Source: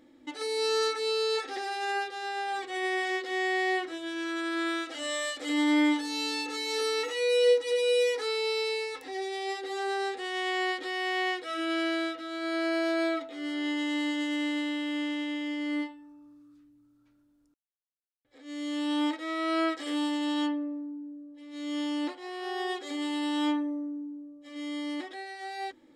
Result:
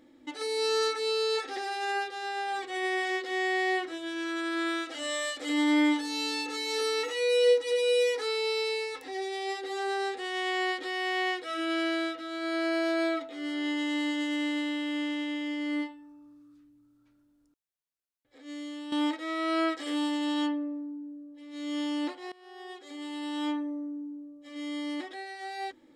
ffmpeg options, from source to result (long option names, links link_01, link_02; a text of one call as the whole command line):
ffmpeg -i in.wav -filter_complex "[0:a]asplit=3[link_01][link_02][link_03];[link_01]atrim=end=18.92,asetpts=PTS-STARTPTS,afade=type=out:start_time=18.49:duration=0.43:curve=qua:silence=0.316228[link_04];[link_02]atrim=start=18.92:end=22.32,asetpts=PTS-STARTPTS,afade=type=in:duration=0.004:curve=hsin:silence=0.316228,afade=type=out:start_time=3.396:duration=0.004:curve=hsin:silence=0.0944061[link_05];[link_03]atrim=start=22.32,asetpts=PTS-STARTPTS,afade=type=in:duration=1.82:silence=0.0944061[link_06];[link_04][link_05][link_06]concat=n=3:v=0:a=1" out.wav